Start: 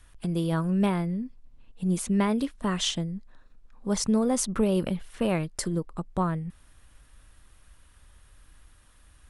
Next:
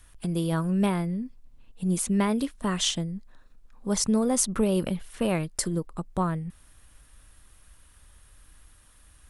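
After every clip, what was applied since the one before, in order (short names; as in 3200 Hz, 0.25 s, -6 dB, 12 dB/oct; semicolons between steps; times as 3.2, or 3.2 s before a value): high shelf 7700 Hz +8.5 dB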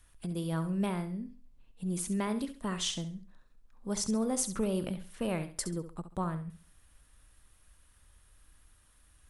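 flutter echo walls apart 11.6 m, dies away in 0.37 s; gain -7.5 dB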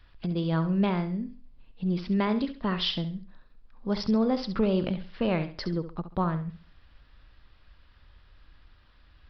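downsampling 11025 Hz; gain +6.5 dB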